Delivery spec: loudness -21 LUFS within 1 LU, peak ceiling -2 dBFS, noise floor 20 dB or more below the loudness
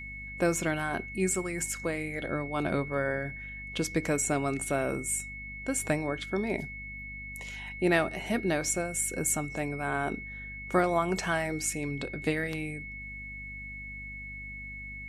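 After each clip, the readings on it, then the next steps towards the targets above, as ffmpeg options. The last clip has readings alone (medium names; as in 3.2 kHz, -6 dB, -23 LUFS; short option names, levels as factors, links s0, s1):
hum 50 Hz; highest harmonic 250 Hz; hum level -44 dBFS; steady tone 2.2 kHz; tone level -40 dBFS; loudness -31.5 LUFS; peak level -12.0 dBFS; loudness target -21.0 LUFS
-> -af "bandreject=f=50:t=h:w=4,bandreject=f=100:t=h:w=4,bandreject=f=150:t=h:w=4,bandreject=f=200:t=h:w=4,bandreject=f=250:t=h:w=4"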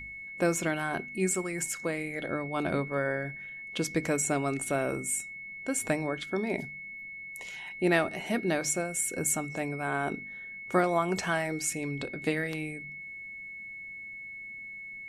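hum not found; steady tone 2.2 kHz; tone level -40 dBFS
-> -af "bandreject=f=2200:w=30"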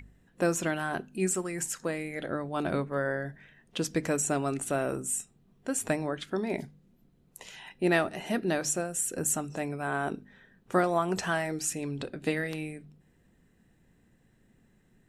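steady tone not found; loudness -31.0 LUFS; peak level -12.5 dBFS; loudness target -21.0 LUFS
-> -af "volume=3.16"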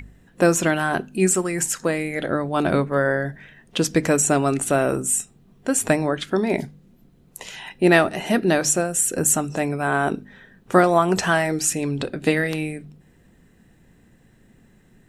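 loudness -21.0 LUFS; peak level -2.5 dBFS; noise floor -55 dBFS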